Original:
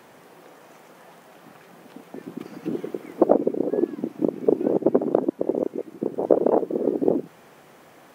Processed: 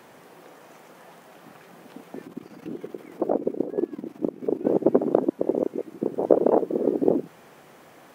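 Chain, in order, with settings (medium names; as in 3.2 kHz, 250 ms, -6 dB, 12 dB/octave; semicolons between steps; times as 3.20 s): 2.27–4.65 s: level held to a coarse grid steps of 11 dB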